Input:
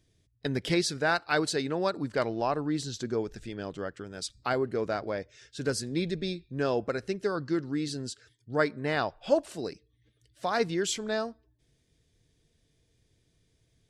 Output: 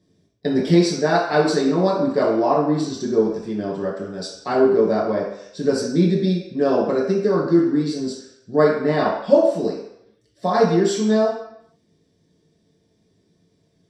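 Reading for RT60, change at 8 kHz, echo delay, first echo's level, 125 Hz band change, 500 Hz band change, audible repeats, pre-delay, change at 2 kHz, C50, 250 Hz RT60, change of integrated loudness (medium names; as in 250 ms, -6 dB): 0.75 s, +3.0 dB, no echo, no echo, +11.0 dB, +12.5 dB, no echo, 3 ms, +3.0 dB, 2.5 dB, 0.55 s, +11.0 dB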